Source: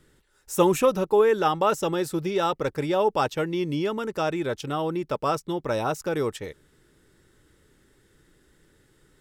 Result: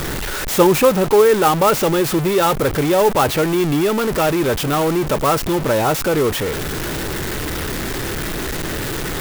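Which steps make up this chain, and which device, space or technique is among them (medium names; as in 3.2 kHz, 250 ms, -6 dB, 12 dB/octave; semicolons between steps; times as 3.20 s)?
early CD player with a faulty converter (jump at every zero crossing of -23 dBFS; sampling jitter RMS 0.034 ms); trim +5.5 dB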